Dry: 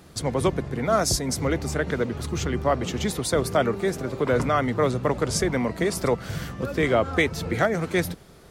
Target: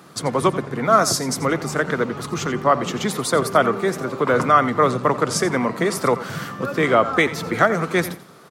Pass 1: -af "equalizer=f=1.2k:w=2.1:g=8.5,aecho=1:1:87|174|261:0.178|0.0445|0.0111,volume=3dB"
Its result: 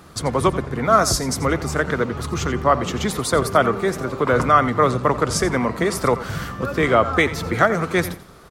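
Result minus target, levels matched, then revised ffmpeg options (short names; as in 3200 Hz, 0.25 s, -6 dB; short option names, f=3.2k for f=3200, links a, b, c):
125 Hz band +3.0 dB
-af "highpass=f=130:w=0.5412,highpass=f=130:w=1.3066,equalizer=f=1.2k:w=2.1:g=8.5,aecho=1:1:87|174|261:0.178|0.0445|0.0111,volume=3dB"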